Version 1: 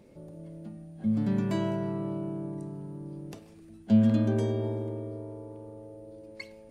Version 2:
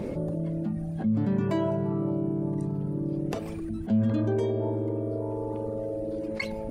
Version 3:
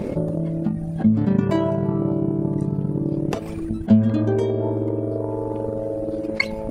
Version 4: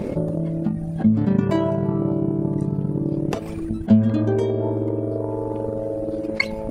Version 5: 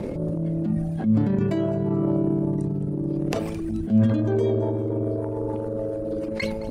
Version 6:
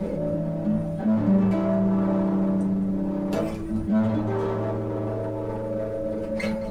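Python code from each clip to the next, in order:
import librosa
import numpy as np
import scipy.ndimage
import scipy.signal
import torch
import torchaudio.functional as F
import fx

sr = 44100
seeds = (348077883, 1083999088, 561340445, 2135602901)

y1 = fx.dereverb_blind(x, sr, rt60_s=1.7)
y1 = fx.high_shelf(y1, sr, hz=2400.0, db=-11.5)
y1 = fx.env_flatten(y1, sr, amount_pct=70)
y1 = y1 * 10.0 ** (-3.5 / 20.0)
y2 = fx.transient(y1, sr, attack_db=8, sustain_db=-5)
y2 = y2 * 10.0 ** (5.5 / 20.0)
y3 = y2
y4 = fx.rotary_switch(y3, sr, hz=0.8, then_hz=7.0, switch_at_s=3.67)
y4 = fx.transient(y4, sr, attack_db=-10, sustain_db=7)
y4 = fx.echo_wet_highpass(y4, sr, ms=216, feedback_pct=44, hz=3800.0, wet_db=-14)
y5 = fx.dmg_noise_colour(y4, sr, seeds[0], colour='brown', level_db=-41.0)
y5 = np.clip(10.0 ** (22.0 / 20.0) * y5, -1.0, 1.0) / 10.0 ** (22.0 / 20.0)
y5 = fx.rev_fdn(y5, sr, rt60_s=0.31, lf_ratio=0.75, hf_ratio=0.55, size_ms=31.0, drr_db=-6.0)
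y5 = y5 * 10.0 ** (-5.5 / 20.0)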